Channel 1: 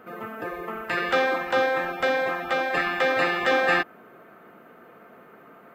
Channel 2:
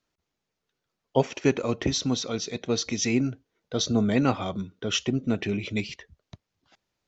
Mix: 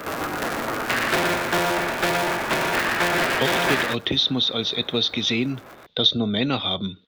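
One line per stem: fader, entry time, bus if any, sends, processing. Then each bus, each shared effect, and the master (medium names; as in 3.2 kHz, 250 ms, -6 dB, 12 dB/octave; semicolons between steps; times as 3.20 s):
0.0 dB, 0.00 s, no send, echo send -4.5 dB, cycle switcher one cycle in 3, inverted
-1.0 dB, 2.25 s, no send, no echo send, resonant low-pass 3.6 kHz, resonance Q 13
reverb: none
echo: delay 118 ms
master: three bands compressed up and down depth 70%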